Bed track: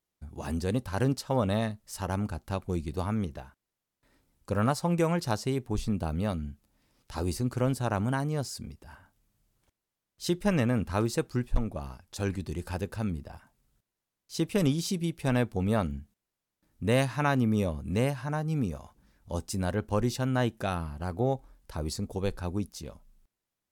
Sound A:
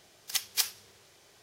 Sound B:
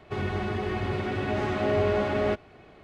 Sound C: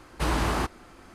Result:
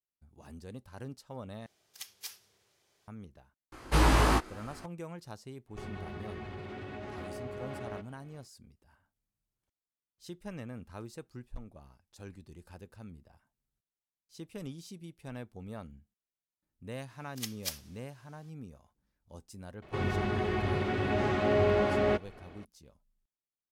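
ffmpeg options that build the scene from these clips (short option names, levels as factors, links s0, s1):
-filter_complex "[1:a]asplit=2[s0][s1];[2:a]asplit=2[s2][s3];[0:a]volume=0.15[s4];[s0]alimiter=limit=0.2:level=0:latency=1:release=23[s5];[3:a]asplit=2[s6][s7];[s7]adelay=19,volume=0.75[s8];[s6][s8]amix=inputs=2:normalize=0[s9];[s2]acompressor=threshold=0.0398:ratio=6:attack=3.2:release=140:knee=1:detection=peak[s10];[s4]asplit=2[s11][s12];[s11]atrim=end=1.664[s13];[s5]atrim=end=1.42,asetpts=PTS-STARTPTS,volume=0.224[s14];[s12]atrim=start=3.076[s15];[s9]atrim=end=1.14,asetpts=PTS-STARTPTS,volume=0.944,afade=t=in:d=0.004:c=hsin,afade=t=out:st=1.136:d=0.004:c=hsin,adelay=3720[s16];[s10]atrim=end=2.83,asetpts=PTS-STARTPTS,volume=0.316,afade=t=in:d=0.1,afade=t=out:st=2.73:d=0.1,adelay=5660[s17];[s1]atrim=end=1.42,asetpts=PTS-STARTPTS,volume=0.355,afade=t=in:d=0.004:c=hsin,afade=t=out:st=1.416:d=0.004:c=hsin,adelay=17080[s18];[s3]atrim=end=2.83,asetpts=PTS-STARTPTS,volume=0.841,afade=t=in:d=0.004:c=hsin,afade=t=out:st=2.826:d=0.004:c=hsin,adelay=19820[s19];[s13][s14]acrossfade=d=0.004:c1=hsin:c2=hsin[s20];[s20][s15]acrossfade=d=0.004:c1=hsin:c2=hsin[s21];[s21][s16][s17][s18][s19]amix=inputs=5:normalize=0"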